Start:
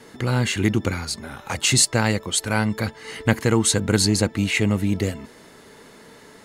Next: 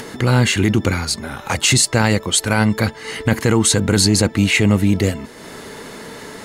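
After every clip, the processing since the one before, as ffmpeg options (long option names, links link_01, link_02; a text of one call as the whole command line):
ffmpeg -i in.wav -af "alimiter=limit=-12dB:level=0:latency=1:release=11,acompressor=mode=upward:threshold=-33dB:ratio=2.5,volume=7dB" out.wav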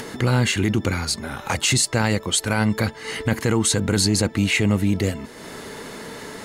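ffmpeg -i in.wav -af "alimiter=limit=-8.5dB:level=0:latency=1:release=299,volume=-1.5dB" out.wav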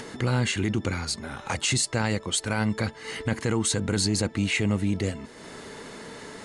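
ffmpeg -i in.wav -af "aresample=22050,aresample=44100,volume=-5.5dB" out.wav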